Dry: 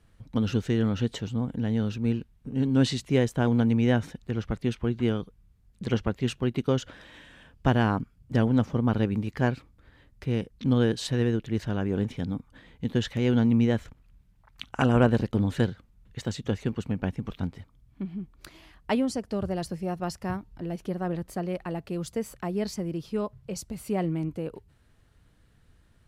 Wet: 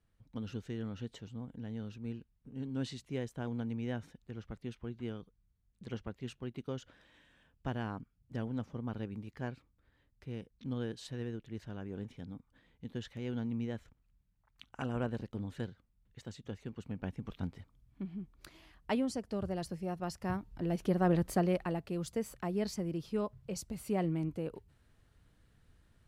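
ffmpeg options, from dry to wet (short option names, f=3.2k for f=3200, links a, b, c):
-af "volume=3dB,afade=t=in:st=16.67:d=0.84:silence=0.398107,afade=t=in:st=20.11:d=1.17:silence=0.316228,afade=t=out:st=21.28:d=0.55:silence=0.398107"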